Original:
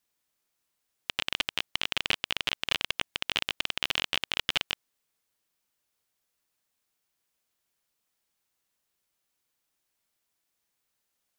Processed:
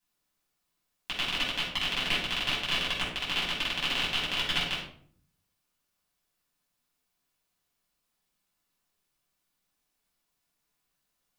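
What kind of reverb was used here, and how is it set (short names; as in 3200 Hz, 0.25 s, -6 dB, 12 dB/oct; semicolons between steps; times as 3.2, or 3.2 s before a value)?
shoebox room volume 690 m³, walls furnished, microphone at 8.9 m; gain -9 dB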